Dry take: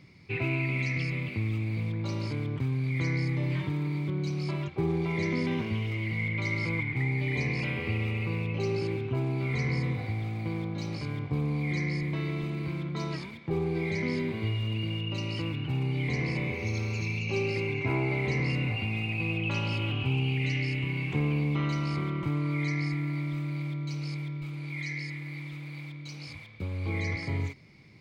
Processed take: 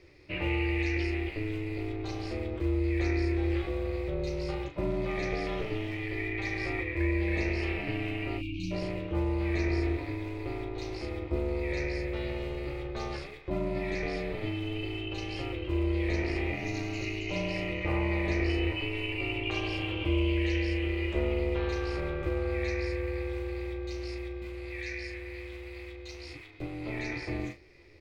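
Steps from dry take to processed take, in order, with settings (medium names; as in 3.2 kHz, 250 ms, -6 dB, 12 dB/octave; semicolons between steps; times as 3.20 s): ring modulator 210 Hz; spectral selection erased 8.38–8.71 s, 350–2200 Hz; early reflections 14 ms -7 dB, 38 ms -8 dB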